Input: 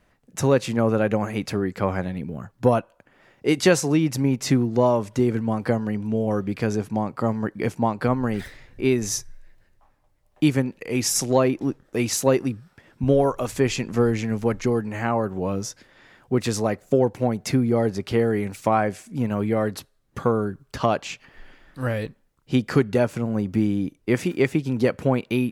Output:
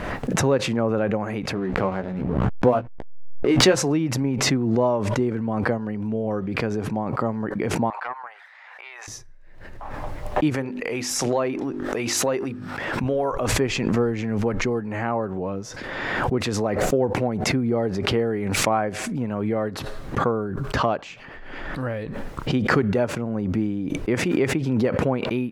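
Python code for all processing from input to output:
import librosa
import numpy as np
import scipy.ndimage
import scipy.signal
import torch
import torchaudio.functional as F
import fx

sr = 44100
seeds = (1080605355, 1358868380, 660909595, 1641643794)

y = fx.chain(x, sr, fx.hum_notches(base_hz=60, count=4),
    fx.backlash(play_db=-31.0),
    fx.doubler(ms=16.0, db=-6.0), at=(1.55, 3.76))
y = fx.chain(y, sr, fx.steep_highpass(hz=780.0, slope=36),
    fx.high_shelf(hz=3400.0, db=-12.0),
    fx.doppler_dist(depth_ms=0.12), at=(7.9, 9.08))
y = fx.chain(y, sr, fx.low_shelf(hz=420.0, db=-9.0),
    fx.hum_notches(base_hz=50, count=8),
    fx.env_flatten(amount_pct=50), at=(10.54, 13.32))
y = fx.lowpass(y, sr, hz=1500.0, slope=6)
y = fx.low_shelf(y, sr, hz=290.0, db=-5.5)
y = fx.pre_swell(y, sr, db_per_s=27.0)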